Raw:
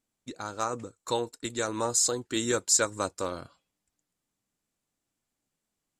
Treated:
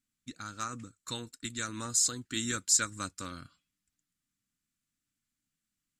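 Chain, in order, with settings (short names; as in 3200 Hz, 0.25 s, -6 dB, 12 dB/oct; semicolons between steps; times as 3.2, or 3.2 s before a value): band shelf 600 Hz -15.5 dB; gain -2 dB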